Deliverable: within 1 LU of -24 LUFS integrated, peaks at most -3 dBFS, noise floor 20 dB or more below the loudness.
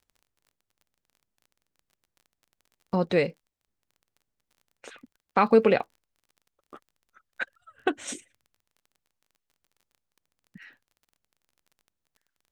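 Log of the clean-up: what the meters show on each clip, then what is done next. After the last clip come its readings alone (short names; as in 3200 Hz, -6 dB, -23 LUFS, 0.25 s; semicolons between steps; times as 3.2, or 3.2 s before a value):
ticks 26/s; loudness -26.0 LUFS; peak -8.0 dBFS; loudness target -24.0 LUFS
-> de-click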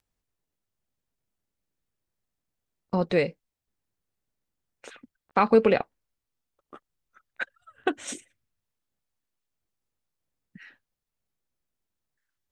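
ticks 0.080/s; loudness -26.0 LUFS; peak -8.0 dBFS; loudness target -24.0 LUFS
-> gain +2 dB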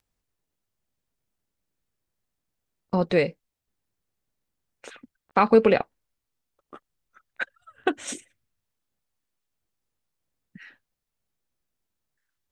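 loudness -24.0 LUFS; peak -6.0 dBFS; noise floor -84 dBFS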